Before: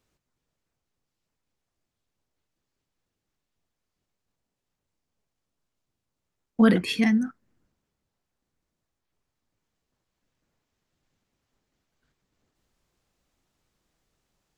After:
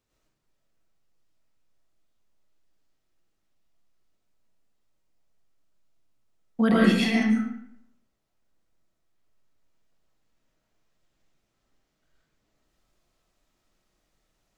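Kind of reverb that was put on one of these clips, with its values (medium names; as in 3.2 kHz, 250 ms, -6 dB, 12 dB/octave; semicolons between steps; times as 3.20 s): algorithmic reverb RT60 0.72 s, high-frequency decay 0.8×, pre-delay 65 ms, DRR -6.5 dB; trim -5 dB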